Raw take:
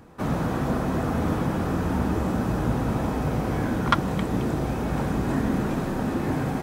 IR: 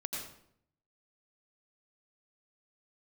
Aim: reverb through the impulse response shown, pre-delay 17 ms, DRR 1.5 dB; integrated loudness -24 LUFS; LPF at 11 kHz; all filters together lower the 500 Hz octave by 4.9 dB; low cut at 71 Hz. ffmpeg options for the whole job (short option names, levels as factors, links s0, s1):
-filter_complex "[0:a]highpass=71,lowpass=11000,equalizer=f=500:t=o:g=-6.5,asplit=2[s0][s1];[1:a]atrim=start_sample=2205,adelay=17[s2];[s1][s2]afir=irnorm=-1:irlink=0,volume=0.708[s3];[s0][s3]amix=inputs=2:normalize=0,volume=1.12"